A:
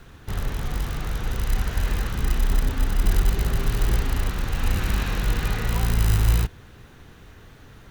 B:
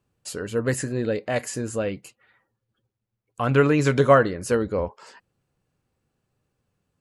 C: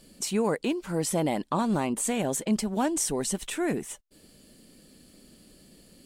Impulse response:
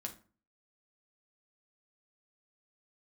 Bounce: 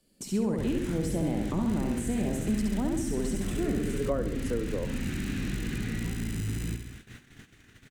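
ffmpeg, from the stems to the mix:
-filter_complex "[0:a]equalizer=frequency=125:width_type=o:width=1:gain=6,equalizer=frequency=250:width_type=o:width=1:gain=8,equalizer=frequency=500:width_type=o:width=1:gain=-8,equalizer=frequency=1000:width_type=o:width=1:gain=-10,equalizer=frequency=2000:width_type=o:width=1:gain=6,equalizer=frequency=8000:width_type=o:width=1:gain=11,alimiter=limit=-12dB:level=0:latency=1:release=18,bass=frequency=250:gain=-10,treble=frequency=4000:gain=-5,adelay=300,volume=3dB,asplit=2[link_01][link_02];[link_02]volume=-9dB[link_03];[1:a]highpass=frequency=270:width=0.5412,highpass=frequency=270:width=1.3066,volume=2dB,asplit=2[link_04][link_05];[link_05]volume=-15dB[link_06];[2:a]equalizer=frequency=14000:width=4.6:gain=6.5,volume=3dB,asplit=3[link_07][link_08][link_09];[link_08]volume=-3.5dB[link_10];[link_09]apad=whole_len=308924[link_11];[link_04][link_11]sidechaincompress=threshold=-51dB:ratio=8:attack=16:release=140[link_12];[link_03][link_06][link_10]amix=inputs=3:normalize=0,aecho=0:1:67|134|201|268|335|402|469:1|0.48|0.23|0.111|0.0531|0.0255|0.0122[link_13];[link_01][link_12][link_07][link_13]amix=inputs=4:normalize=0,acrossover=split=160|390[link_14][link_15][link_16];[link_14]acompressor=threshold=-34dB:ratio=4[link_17];[link_15]acompressor=threshold=-28dB:ratio=4[link_18];[link_16]acompressor=threshold=-43dB:ratio=4[link_19];[link_17][link_18][link_19]amix=inputs=3:normalize=0,agate=range=-18dB:threshold=-44dB:ratio=16:detection=peak"

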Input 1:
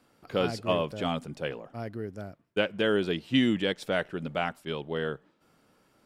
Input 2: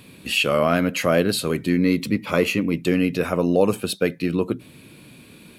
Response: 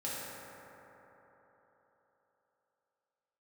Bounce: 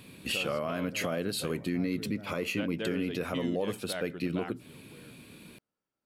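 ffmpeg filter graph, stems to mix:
-filter_complex "[0:a]volume=-5.5dB[link_01];[1:a]volume=-4.5dB,asplit=2[link_02][link_03];[link_03]apad=whole_len=266939[link_04];[link_01][link_04]sidechaingate=range=-20dB:threshold=-39dB:ratio=16:detection=peak[link_05];[link_05][link_02]amix=inputs=2:normalize=0,alimiter=limit=-21.5dB:level=0:latency=1:release=212"

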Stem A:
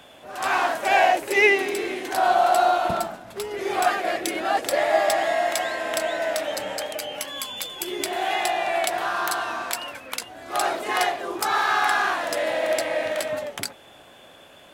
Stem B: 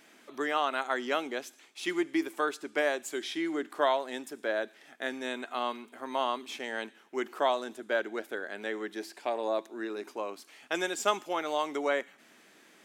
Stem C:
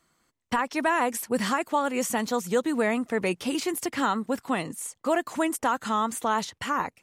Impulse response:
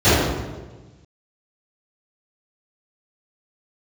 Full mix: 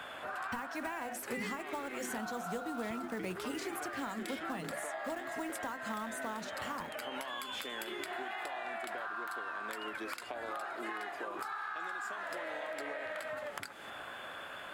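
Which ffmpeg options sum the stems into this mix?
-filter_complex "[0:a]equalizer=frequency=1400:width_type=o:width=1.3:gain=14.5,acompressor=threshold=-33dB:ratio=2,volume=-3.5dB[link_01];[1:a]acompressor=threshold=-37dB:ratio=6,adelay=1050,volume=2.5dB[link_02];[2:a]bandreject=frequency=50:width_type=h:width=6,bandreject=frequency=100:width_type=h:width=6,bandreject=frequency=150:width_type=h:width=6,bandreject=frequency=200:width_type=h:width=6,bandreject=frequency=250:width_type=h:width=6,bandreject=frequency=300:width_type=h:width=6,bandreject=frequency=350:width_type=h:width=6,bandreject=frequency=400:width_type=h:width=6,bandreject=frequency=450:width_type=h:width=6,bandreject=frequency=500:width_type=h:width=6,acrusher=bits=4:mode=log:mix=0:aa=0.000001,volume=-6.5dB[link_03];[link_01][link_02]amix=inputs=2:normalize=0,equalizer=frequency=5900:width_type=o:width=0.2:gain=-7,acompressor=threshold=-37dB:ratio=2,volume=0dB[link_04];[link_03][link_04]amix=inputs=2:normalize=0,acrossover=split=180[link_05][link_06];[link_06]acompressor=threshold=-37dB:ratio=6[link_07];[link_05][link_07]amix=inputs=2:normalize=0"

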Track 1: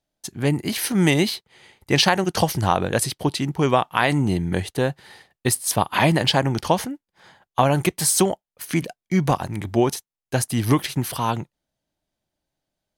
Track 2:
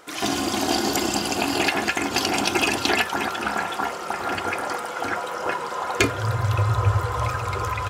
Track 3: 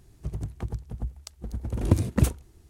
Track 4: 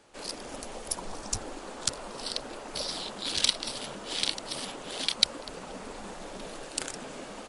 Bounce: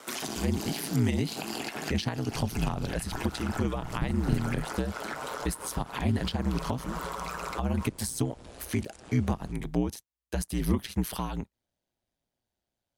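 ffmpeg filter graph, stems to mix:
ffmpeg -i stem1.wav -i stem2.wav -i stem3.wav -i stem4.wav -filter_complex "[0:a]volume=-2dB,asplit=2[link_01][link_02];[1:a]highpass=frequency=150:width=0.5412,highpass=frequency=150:width=1.3066,highshelf=frequency=6300:gain=8.5,acompressor=threshold=-28dB:ratio=6,volume=2.5dB[link_03];[2:a]adelay=2100,volume=-6.5dB[link_04];[3:a]acompressor=threshold=-42dB:ratio=2,acrossover=split=230[link_05][link_06];[link_06]acompressor=threshold=-47dB:ratio=3[link_07];[link_05][link_07]amix=inputs=2:normalize=0,adelay=2050,volume=2dB[link_08];[link_02]apad=whole_len=348075[link_09];[link_03][link_09]sidechaincompress=threshold=-24dB:ratio=8:attack=24:release=196[link_10];[link_01][link_10][link_04][link_08]amix=inputs=4:normalize=0,aeval=exprs='val(0)*sin(2*PI*60*n/s)':channel_layout=same,acrossover=split=250[link_11][link_12];[link_12]acompressor=threshold=-32dB:ratio=10[link_13];[link_11][link_13]amix=inputs=2:normalize=0" out.wav

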